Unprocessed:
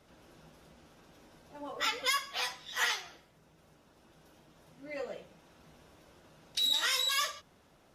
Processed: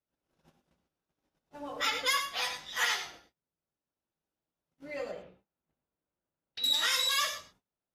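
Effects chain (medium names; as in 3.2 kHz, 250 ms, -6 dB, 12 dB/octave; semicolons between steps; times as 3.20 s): 5.11–6.64 s: distance through air 310 m; gate -54 dBFS, range -33 dB; gated-style reverb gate 130 ms rising, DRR 7.5 dB; trim +1 dB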